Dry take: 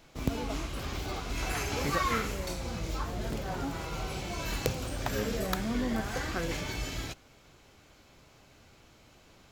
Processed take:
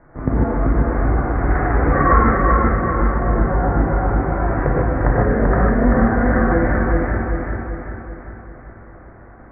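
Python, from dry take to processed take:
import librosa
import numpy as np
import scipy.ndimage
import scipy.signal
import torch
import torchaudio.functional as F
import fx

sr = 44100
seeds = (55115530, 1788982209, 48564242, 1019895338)

p1 = scipy.signal.sosfilt(scipy.signal.butter(12, 1900.0, 'lowpass', fs=sr, output='sos'), x)
p2 = p1 + fx.echo_feedback(p1, sr, ms=388, feedback_pct=52, wet_db=-3.0, dry=0)
p3 = fx.rev_gated(p2, sr, seeds[0], gate_ms=170, shape='rising', drr_db=-4.5)
y = p3 * librosa.db_to_amplitude(8.5)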